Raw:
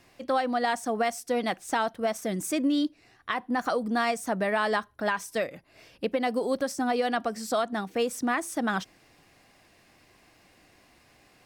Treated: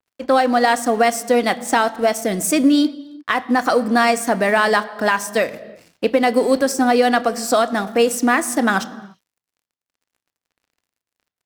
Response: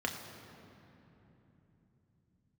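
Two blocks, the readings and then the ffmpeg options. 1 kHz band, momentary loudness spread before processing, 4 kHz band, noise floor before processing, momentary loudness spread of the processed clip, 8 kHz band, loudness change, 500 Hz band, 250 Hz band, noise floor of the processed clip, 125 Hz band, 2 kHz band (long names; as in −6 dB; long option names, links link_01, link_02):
+10.5 dB, 6 LU, +10.5 dB, −61 dBFS, 7 LU, +13.0 dB, +11.0 dB, +11.0 dB, +11.0 dB, below −85 dBFS, can't be measured, +11.5 dB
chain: -filter_complex "[0:a]highpass=frequency=49:width=0.5412,highpass=frequency=49:width=1.3066,aeval=exprs='sgn(val(0))*max(abs(val(0))-0.00282,0)':channel_layout=same,asplit=2[link_01][link_02];[1:a]atrim=start_sample=2205,afade=type=out:start_time=0.41:duration=0.01,atrim=end_sample=18522[link_03];[link_02][link_03]afir=irnorm=-1:irlink=0,volume=-12.5dB[link_04];[link_01][link_04]amix=inputs=2:normalize=0,adynamicequalizer=threshold=0.00631:dfrequency=3700:dqfactor=0.7:tfrequency=3700:tqfactor=0.7:attack=5:release=100:ratio=0.375:range=2.5:mode=boostabove:tftype=highshelf,volume=8.5dB"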